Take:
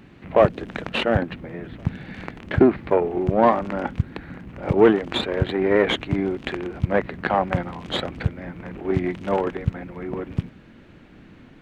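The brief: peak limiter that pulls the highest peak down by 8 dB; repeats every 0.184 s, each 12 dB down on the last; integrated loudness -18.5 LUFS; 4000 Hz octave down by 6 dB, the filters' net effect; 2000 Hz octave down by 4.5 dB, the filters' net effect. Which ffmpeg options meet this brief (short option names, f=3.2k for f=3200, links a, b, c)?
-af "equalizer=f=2k:t=o:g=-4.5,equalizer=f=4k:t=o:g=-6,alimiter=limit=-12dB:level=0:latency=1,aecho=1:1:184|368|552:0.251|0.0628|0.0157,volume=8dB"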